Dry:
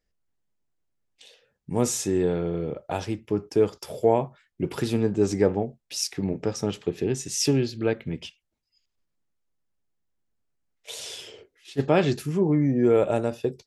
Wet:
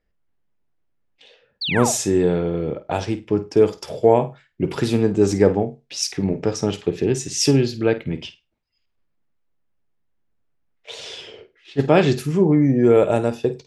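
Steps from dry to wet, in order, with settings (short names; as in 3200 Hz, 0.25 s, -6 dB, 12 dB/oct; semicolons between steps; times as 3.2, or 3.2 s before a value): low-pass opened by the level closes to 2800 Hz, open at -20.5 dBFS; painted sound fall, 1.61–1.92, 580–4800 Hz -30 dBFS; flutter echo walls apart 8.7 m, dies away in 0.23 s; gain +5.5 dB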